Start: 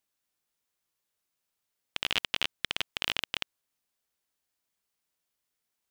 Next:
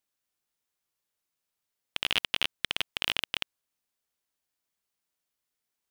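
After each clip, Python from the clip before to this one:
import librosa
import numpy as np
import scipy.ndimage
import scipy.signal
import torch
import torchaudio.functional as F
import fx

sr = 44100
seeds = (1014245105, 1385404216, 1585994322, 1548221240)

y = fx.leveller(x, sr, passes=1)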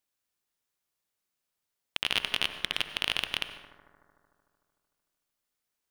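y = fx.echo_bbd(x, sr, ms=75, stages=1024, feedback_pct=81, wet_db=-14.0)
y = fx.rev_plate(y, sr, seeds[0], rt60_s=0.71, hf_ratio=0.85, predelay_ms=80, drr_db=12.5)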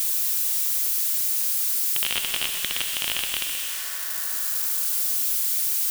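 y = x + 0.5 * 10.0 ** (-20.0 / 20.0) * np.diff(np.sign(x), prepend=np.sign(x[:1]))
y = y + 10.0 ** (-10.5 / 20.0) * np.pad(y, (int(128 * sr / 1000.0), 0))[:len(y)]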